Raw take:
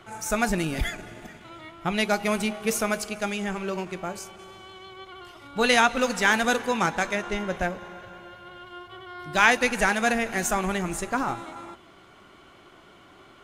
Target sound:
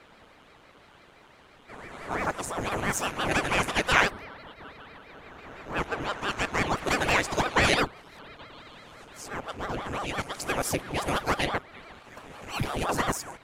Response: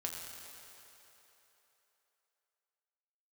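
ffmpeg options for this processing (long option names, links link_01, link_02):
-af "areverse,aeval=exprs='val(0)*sin(2*PI*540*n/s+540*0.9/5.9*sin(2*PI*5.9*n/s))':channel_layout=same"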